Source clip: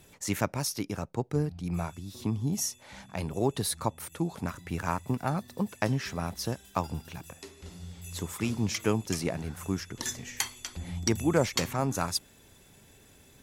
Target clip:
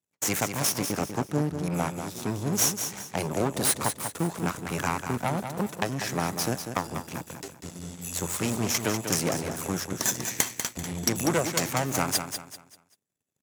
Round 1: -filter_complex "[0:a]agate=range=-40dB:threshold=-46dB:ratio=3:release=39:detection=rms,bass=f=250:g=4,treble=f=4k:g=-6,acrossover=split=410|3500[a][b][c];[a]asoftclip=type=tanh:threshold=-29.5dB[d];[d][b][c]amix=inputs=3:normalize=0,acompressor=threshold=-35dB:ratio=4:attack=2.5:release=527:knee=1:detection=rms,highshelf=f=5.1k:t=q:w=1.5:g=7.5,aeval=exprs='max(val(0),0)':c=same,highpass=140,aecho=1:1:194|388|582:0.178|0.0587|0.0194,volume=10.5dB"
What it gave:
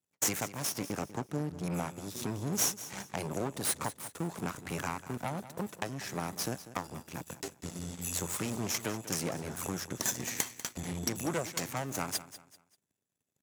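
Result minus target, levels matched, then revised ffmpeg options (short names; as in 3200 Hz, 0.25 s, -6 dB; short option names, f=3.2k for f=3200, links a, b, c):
compressor: peak gain reduction +8 dB; echo-to-direct -7 dB
-filter_complex "[0:a]agate=range=-40dB:threshold=-46dB:ratio=3:release=39:detection=rms,bass=f=250:g=4,treble=f=4k:g=-6,acrossover=split=410|3500[a][b][c];[a]asoftclip=type=tanh:threshold=-29.5dB[d];[d][b][c]amix=inputs=3:normalize=0,acompressor=threshold=-24dB:ratio=4:attack=2.5:release=527:knee=1:detection=rms,highshelf=f=5.1k:t=q:w=1.5:g=7.5,aeval=exprs='max(val(0),0)':c=same,highpass=140,aecho=1:1:194|388|582|776:0.398|0.131|0.0434|0.0143,volume=10.5dB"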